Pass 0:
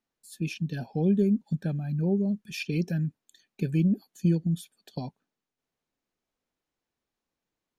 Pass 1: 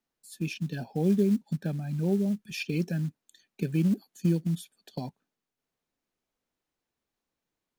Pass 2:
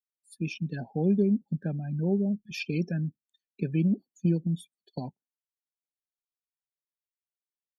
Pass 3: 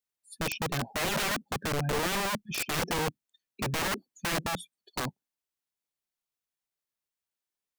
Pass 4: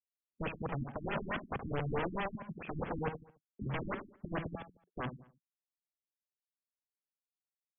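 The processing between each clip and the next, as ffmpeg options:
-filter_complex "[0:a]acrossover=split=130|3500[a][b][c];[a]acompressor=threshold=-45dB:ratio=8[d];[d][b][c]amix=inputs=3:normalize=0,acrusher=bits=7:mode=log:mix=0:aa=0.000001"
-af "afftdn=nr=29:nf=-44"
-af "aeval=exprs='(mod(28.2*val(0)+1,2)-1)/28.2':c=same,volume=4dB"
-filter_complex "[0:a]agate=range=-14dB:threshold=-54dB:ratio=16:detection=peak,asplit=2[a][b];[b]adelay=72,lowpass=f=3k:p=1,volume=-9dB,asplit=2[c][d];[d]adelay=72,lowpass=f=3k:p=1,volume=0.39,asplit=2[e][f];[f]adelay=72,lowpass=f=3k:p=1,volume=0.39,asplit=2[g][h];[h]adelay=72,lowpass=f=3k:p=1,volume=0.39[i];[c][e][g][i]amix=inputs=4:normalize=0[j];[a][j]amix=inputs=2:normalize=0,afftfilt=real='re*lt(b*sr/1024,310*pow(3500/310,0.5+0.5*sin(2*PI*4.6*pts/sr)))':imag='im*lt(b*sr/1024,310*pow(3500/310,0.5+0.5*sin(2*PI*4.6*pts/sr)))':win_size=1024:overlap=0.75,volume=-4.5dB"

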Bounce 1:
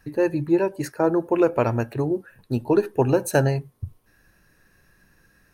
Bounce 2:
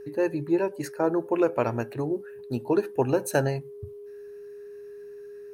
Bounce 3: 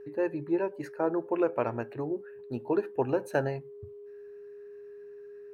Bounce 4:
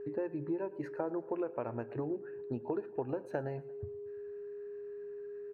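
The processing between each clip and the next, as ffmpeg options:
-af "highpass=f=150:p=1,aeval=exprs='val(0)+0.0158*sin(2*PI*410*n/s)':c=same,volume=-3.5dB"
-af "bass=f=250:g=-4,treble=f=4k:g=-15,volume=-3.5dB"
-af "lowpass=f=1.3k:p=1,acompressor=threshold=-36dB:ratio=6,aecho=1:1:114|228|342|456:0.0944|0.0538|0.0307|0.0175,volume=3dB"

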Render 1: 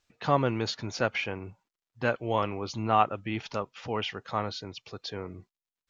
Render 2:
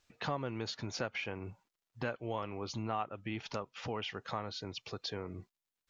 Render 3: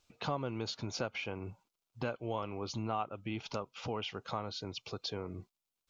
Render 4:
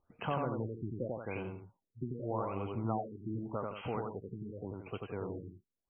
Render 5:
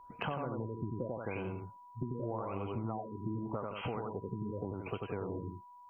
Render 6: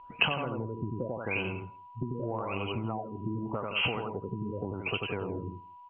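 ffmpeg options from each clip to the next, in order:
-af "acompressor=threshold=-39dB:ratio=3,volume=1.5dB"
-af "equalizer=f=1.8k:t=o:w=0.28:g=-13,volume=1dB"
-af "aecho=1:1:90.38|169.1:0.708|0.316,afftfilt=real='re*lt(b*sr/1024,410*pow(3300/410,0.5+0.5*sin(2*PI*0.85*pts/sr)))':imag='im*lt(b*sr/1024,410*pow(3300/410,0.5+0.5*sin(2*PI*0.85*pts/sr)))':win_size=1024:overlap=0.75"
-af "acompressor=threshold=-42dB:ratio=6,aeval=exprs='val(0)+0.001*sin(2*PI*980*n/s)':c=same,volume=7.5dB"
-af "lowpass=f=2.8k:t=q:w=8.1,aecho=1:1:164:0.0631,volume=3.5dB"

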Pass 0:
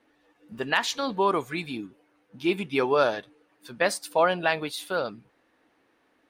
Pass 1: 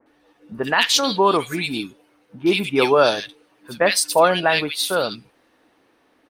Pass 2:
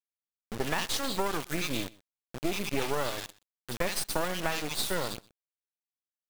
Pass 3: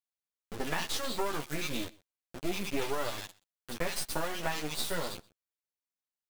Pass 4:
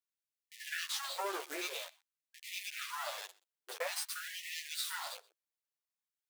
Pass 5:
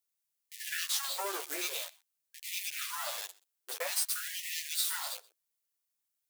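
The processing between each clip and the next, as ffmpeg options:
-filter_complex "[0:a]bandreject=f=7k:w=15,acrossover=split=1900[a][b];[b]adelay=60[c];[a][c]amix=inputs=2:normalize=0,adynamicequalizer=threshold=0.00794:dfrequency=2400:dqfactor=0.7:tfrequency=2400:tqfactor=0.7:attack=5:release=100:ratio=0.375:range=3.5:mode=boostabove:tftype=highshelf,volume=7dB"
-af "acompressor=threshold=-24dB:ratio=10,acrusher=bits=3:dc=4:mix=0:aa=0.000001,aecho=1:1:125:0.0668"
-af "flanger=delay=9.8:depth=4:regen=-3:speed=0.34:shape=triangular"
-af "afftfilt=real='re*gte(b*sr/1024,300*pow(1800/300,0.5+0.5*sin(2*PI*0.5*pts/sr)))':imag='im*gte(b*sr/1024,300*pow(1800/300,0.5+0.5*sin(2*PI*0.5*pts/sr)))':win_size=1024:overlap=0.75,volume=-2.5dB"
-af "highshelf=f=5.2k:g=11.5"

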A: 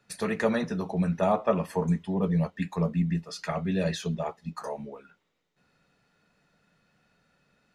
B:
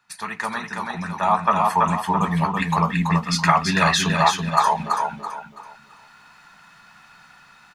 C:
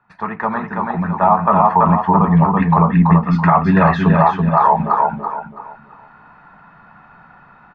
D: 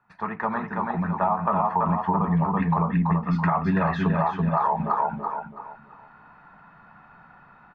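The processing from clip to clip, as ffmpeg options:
-filter_complex "[0:a]lowshelf=f=700:t=q:w=3:g=-10,asplit=2[a][b];[b]aecho=0:1:331|662|993|1324:0.596|0.179|0.0536|0.0161[c];[a][c]amix=inputs=2:normalize=0,dynaudnorm=f=660:g=5:m=16dB,volume=2.5dB"
-af "lowpass=1.1k,aemphasis=mode=reproduction:type=50kf,alimiter=level_in=11.5dB:limit=-1dB:release=50:level=0:latency=1,volume=-1dB"
-af "acompressor=threshold=-13dB:ratio=5,volume=-6dB"

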